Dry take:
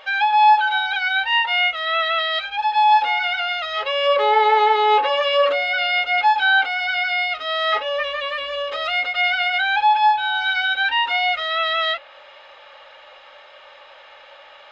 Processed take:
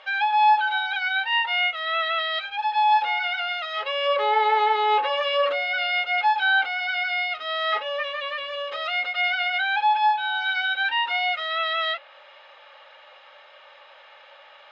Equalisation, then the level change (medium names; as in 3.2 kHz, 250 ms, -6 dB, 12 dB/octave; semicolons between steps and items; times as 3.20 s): distance through air 69 m; bass shelf 310 Hz -10 dB; -3.0 dB